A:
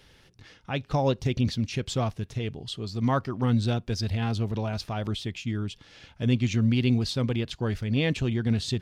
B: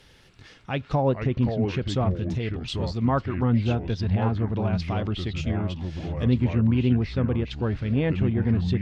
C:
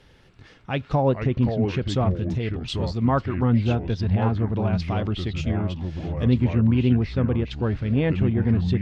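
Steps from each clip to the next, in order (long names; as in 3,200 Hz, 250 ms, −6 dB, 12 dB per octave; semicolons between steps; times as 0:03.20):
treble cut that deepens with the level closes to 1,600 Hz, closed at −22.5 dBFS; delay with pitch and tempo change per echo 280 ms, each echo −4 semitones, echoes 2, each echo −6 dB; level +2 dB
one half of a high-frequency compander decoder only; level +2 dB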